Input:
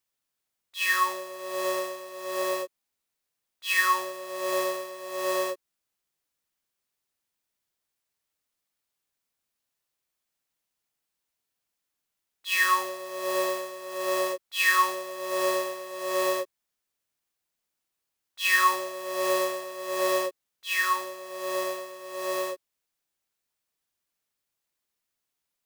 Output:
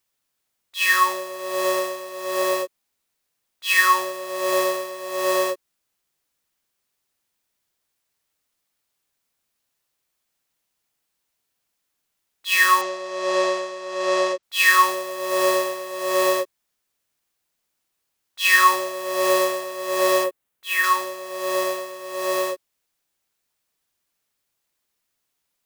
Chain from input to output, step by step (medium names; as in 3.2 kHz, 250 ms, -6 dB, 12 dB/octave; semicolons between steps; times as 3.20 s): 12.81–14.43 s: low-pass 6.9 kHz 24 dB/octave; 20.24–20.84 s: peaking EQ 5.1 kHz -7.5 dB 1.3 oct; trim +6.5 dB